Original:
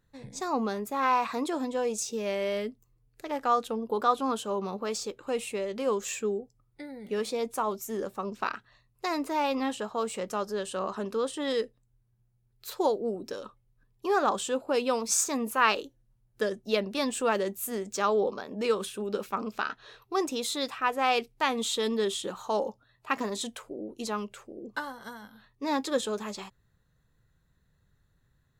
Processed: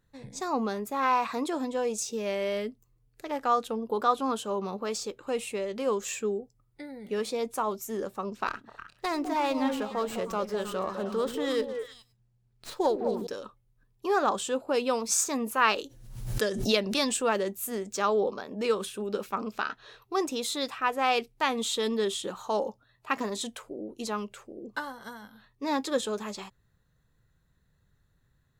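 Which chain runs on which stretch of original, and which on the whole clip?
8.47–13.27 delay with a stepping band-pass 0.103 s, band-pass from 220 Hz, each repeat 1.4 oct, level -2 dB + running maximum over 3 samples
15.78–17.17 bell 6200 Hz +7 dB 2.4 oct + backwards sustainer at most 60 dB/s
whole clip: dry

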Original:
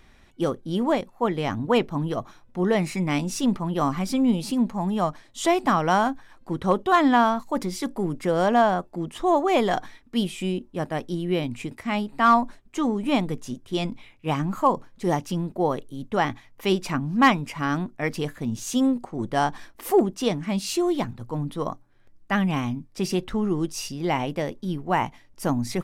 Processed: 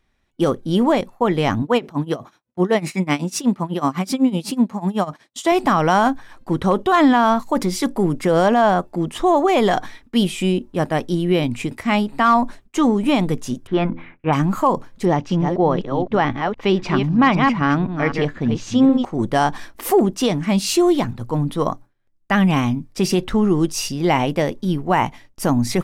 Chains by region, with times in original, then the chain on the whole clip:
1.62–5.52 HPF 130 Hz + tremolo 8 Hz, depth 90%
13.67–14.33 synth low-pass 1600 Hz, resonance Q 2.6 + de-hum 83.95 Hz, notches 7
15.05–19.05 reverse delay 0.256 s, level -7 dB + air absorption 160 m
whole clip: gate with hold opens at -39 dBFS; limiter -15 dBFS; gain +8 dB

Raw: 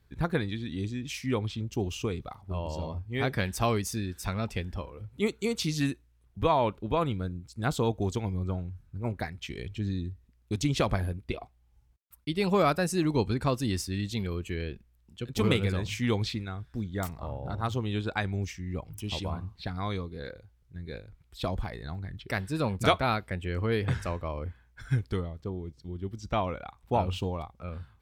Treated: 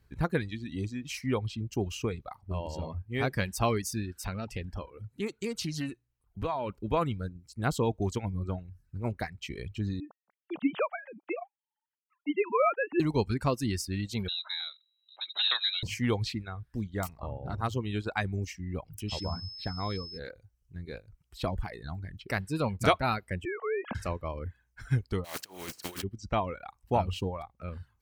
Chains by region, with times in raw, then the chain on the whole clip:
4.16–6.7 de-hum 60.17 Hz, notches 2 + compressor 2.5:1, threshold -30 dBFS + Doppler distortion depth 0.16 ms
10–13 sine-wave speech + HPF 340 Hz 6 dB/oct + treble ducked by the level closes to 2800 Hz, closed at -24 dBFS
14.28–15.83 inverted band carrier 3900 Hz + HPF 1000 Hz
19.08–20.17 dynamic EQ 2400 Hz, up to -4 dB, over -50 dBFS, Q 1.6 + whine 5200 Hz -39 dBFS
23.45–23.95 sine-wave speech + compressor 3:1, threshold -29 dBFS
25.24–26.02 spectral contrast lowered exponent 0.4 + HPF 300 Hz 6 dB/oct + negative-ratio compressor -44 dBFS, ratio -0.5
whole clip: reverb removal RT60 0.67 s; notch 3500 Hz, Q 9.8

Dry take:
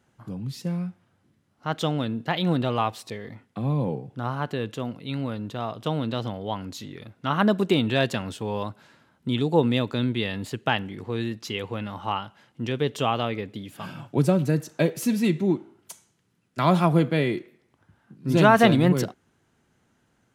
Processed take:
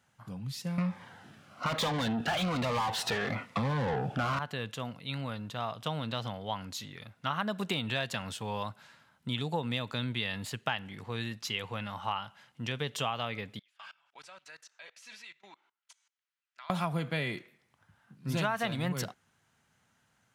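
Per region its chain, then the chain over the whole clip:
0.78–4.39 overdrive pedal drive 36 dB, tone 1100 Hz, clips at -9 dBFS + cascading phaser falling 1.1 Hz
13.59–16.7 HPF 1300 Hz + level quantiser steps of 23 dB + air absorption 100 m
whole clip: HPF 140 Hz 6 dB/oct; bell 340 Hz -13.5 dB 1.3 oct; compressor, threshold -28 dBFS

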